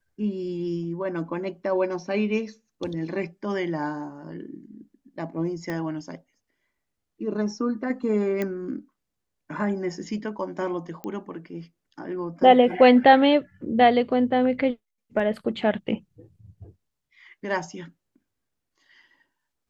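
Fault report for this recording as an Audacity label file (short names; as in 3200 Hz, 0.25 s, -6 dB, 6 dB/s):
5.700000	5.700000	pop -18 dBFS
8.420000	8.420000	pop -15 dBFS
11.040000	11.040000	pop -22 dBFS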